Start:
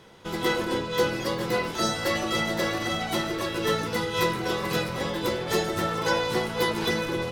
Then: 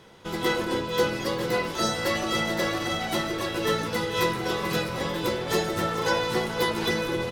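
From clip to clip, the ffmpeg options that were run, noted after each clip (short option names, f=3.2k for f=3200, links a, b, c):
-af "aecho=1:1:445|890|1335|1780:0.188|0.0772|0.0317|0.013"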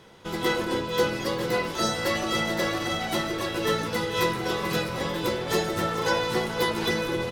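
-af anull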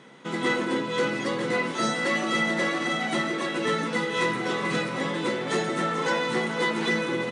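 -af "asoftclip=type=tanh:threshold=-19dB,equalizer=f=250:t=o:w=0.33:g=10,equalizer=f=1.25k:t=o:w=0.33:g=3,equalizer=f=2k:t=o:w=0.33:g=6,equalizer=f=5k:t=o:w=0.33:g=-6,afftfilt=real='re*between(b*sr/4096,120,10000)':imag='im*between(b*sr/4096,120,10000)':win_size=4096:overlap=0.75"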